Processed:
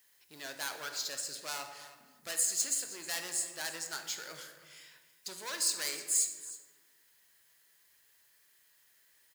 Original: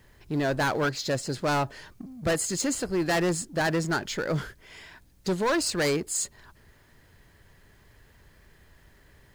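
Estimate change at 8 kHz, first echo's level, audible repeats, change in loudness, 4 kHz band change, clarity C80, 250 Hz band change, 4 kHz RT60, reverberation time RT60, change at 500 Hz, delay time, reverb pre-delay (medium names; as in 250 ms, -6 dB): +0.5 dB, -17.0 dB, 1, -6.5 dB, -3.5 dB, 8.5 dB, -26.5 dB, 0.80 s, 1.4 s, -21.0 dB, 316 ms, 18 ms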